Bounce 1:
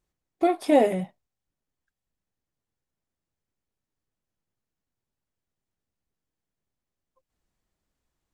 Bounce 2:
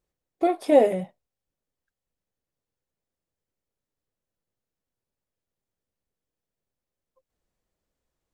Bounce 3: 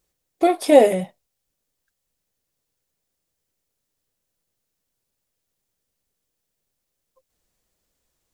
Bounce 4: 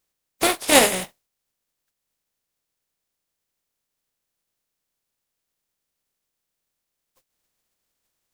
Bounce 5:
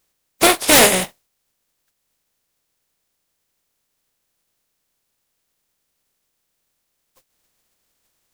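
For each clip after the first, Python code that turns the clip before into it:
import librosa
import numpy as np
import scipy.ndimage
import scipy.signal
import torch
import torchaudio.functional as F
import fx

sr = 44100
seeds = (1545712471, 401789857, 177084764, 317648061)

y1 = fx.peak_eq(x, sr, hz=510.0, db=7.0, octaves=0.65)
y1 = y1 * librosa.db_to_amplitude(-2.5)
y2 = fx.high_shelf(y1, sr, hz=2900.0, db=10.0)
y2 = y2 * librosa.db_to_amplitude(4.5)
y3 = fx.spec_flatten(y2, sr, power=0.4)
y3 = y3 * librosa.db_to_amplitude(-3.0)
y4 = 10.0 ** (-12.5 / 20.0) * (np.abs((y3 / 10.0 ** (-12.5 / 20.0) + 3.0) % 4.0 - 2.0) - 1.0)
y4 = y4 * librosa.db_to_amplitude(8.0)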